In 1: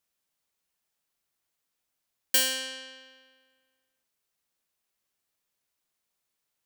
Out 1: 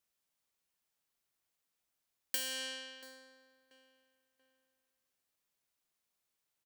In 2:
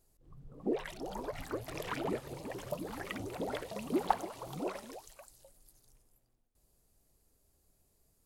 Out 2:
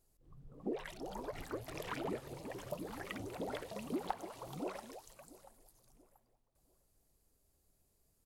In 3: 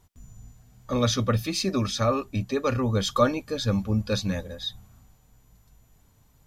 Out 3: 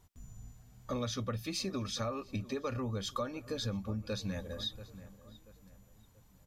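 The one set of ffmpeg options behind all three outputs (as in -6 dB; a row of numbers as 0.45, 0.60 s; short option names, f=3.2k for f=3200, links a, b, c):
-filter_complex "[0:a]asplit=2[a][b];[b]adelay=684,lowpass=f=2.4k:p=1,volume=-21dB,asplit=2[c][d];[d]adelay=684,lowpass=f=2.4k:p=1,volume=0.38,asplit=2[e][f];[f]adelay=684,lowpass=f=2.4k:p=1,volume=0.38[g];[a][c][e][g]amix=inputs=4:normalize=0,acompressor=threshold=-30dB:ratio=6,volume=-3.5dB"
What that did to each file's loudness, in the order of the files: -12.5, -5.0, -11.5 LU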